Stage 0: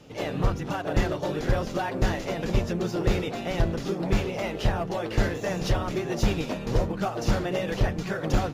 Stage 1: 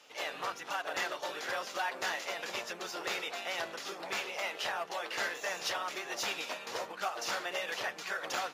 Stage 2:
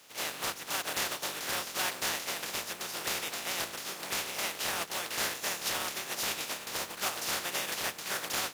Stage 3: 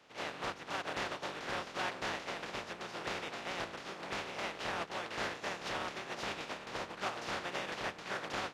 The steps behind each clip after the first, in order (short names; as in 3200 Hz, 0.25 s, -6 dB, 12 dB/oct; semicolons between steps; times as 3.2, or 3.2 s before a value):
HPF 1000 Hz 12 dB/oct
spectral contrast lowered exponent 0.34; gain +2.5 dB
tape spacing loss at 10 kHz 26 dB; gain +1 dB